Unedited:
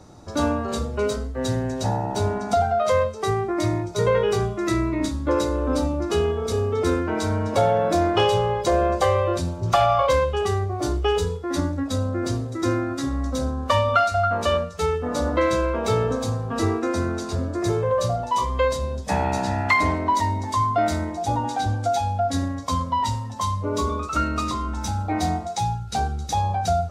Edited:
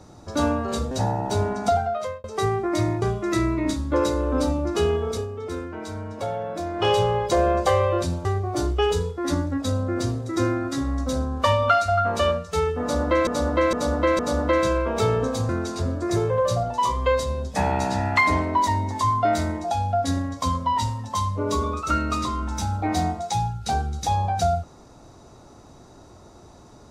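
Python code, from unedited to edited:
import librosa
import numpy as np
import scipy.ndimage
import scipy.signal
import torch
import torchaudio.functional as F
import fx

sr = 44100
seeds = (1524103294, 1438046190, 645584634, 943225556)

y = fx.edit(x, sr, fx.cut(start_s=0.91, length_s=0.85),
    fx.fade_out_span(start_s=2.54, length_s=0.55),
    fx.cut(start_s=3.87, length_s=0.5),
    fx.fade_down_up(start_s=6.43, length_s=1.84, db=-9.5, fade_s=0.19),
    fx.cut(start_s=9.6, length_s=0.91),
    fx.repeat(start_s=15.07, length_s=0.46, count=4),
    fx.cut(start_s=16.37, length_s=0.65),
    fx.cut(start_s=21.24, length_s=0.73), tone=tone)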